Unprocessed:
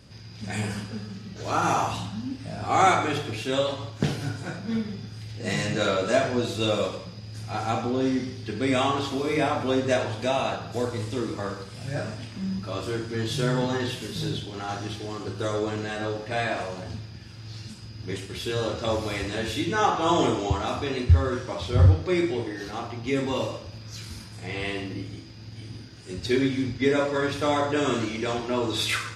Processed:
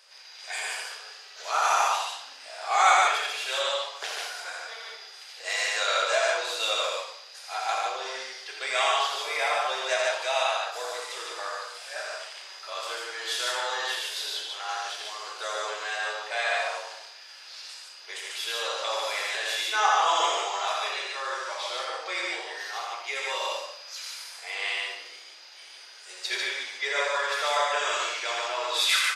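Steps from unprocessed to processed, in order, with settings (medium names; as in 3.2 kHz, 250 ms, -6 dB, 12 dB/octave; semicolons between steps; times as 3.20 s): Bessel high-pass 960 Hz, order 8; loudspeakers at several distances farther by 28 m -4 dB, 50 m -2 dB; trim +2 dB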